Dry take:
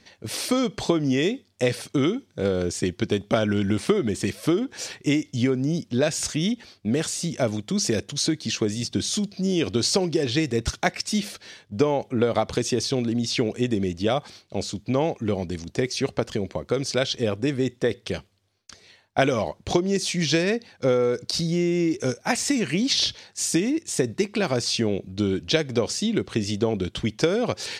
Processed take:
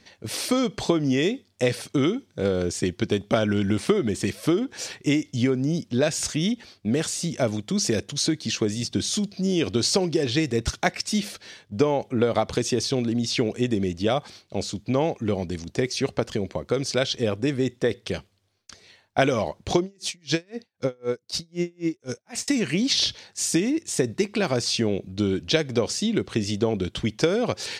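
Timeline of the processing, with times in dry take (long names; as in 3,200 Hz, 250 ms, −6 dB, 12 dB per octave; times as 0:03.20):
0:19.82–0:22.48: tremolo with a sine in dB 3.9 Hz, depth 38 dB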